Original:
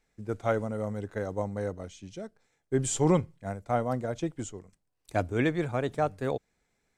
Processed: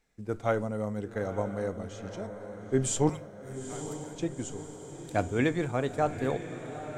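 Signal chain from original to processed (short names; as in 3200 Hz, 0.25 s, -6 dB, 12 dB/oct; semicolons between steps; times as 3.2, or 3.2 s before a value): 3.09–4.15 differentiator; diffused feedback echo 0.902 s, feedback 60%, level -10.5 dB; on a send at -15 dB: reverb RT60 0.40 s, pre-delay 4 ms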